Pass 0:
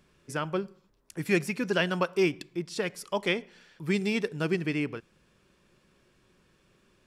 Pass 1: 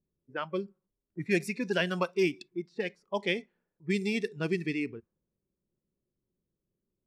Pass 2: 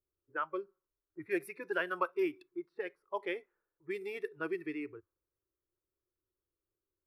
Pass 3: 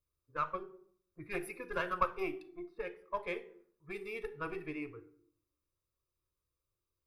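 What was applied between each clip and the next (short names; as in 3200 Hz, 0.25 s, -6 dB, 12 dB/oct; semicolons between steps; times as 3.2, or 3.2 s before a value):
low-pass opened by the level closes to 410 Hz, open at -23.5 dBFS; spectral noise reduction 16 dB; gain -2 dB
EQ curve 100 Hz 0 dB, 220 Hz -23 dB, 310 Hz +2 dB, 500 Hz +1 dB, 720 Hz -1 dB, 1300 Hz +10 dB, 2000 Hz -1 dB, 7100 Hz -20 dB, 11000 Hz +4 dB; gain -6.5 dB
one diode to ground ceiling -28 dBFS; reverb RT60 0.60 s, pre-delay 4 ms, DRR 10 dB; gain -3 dB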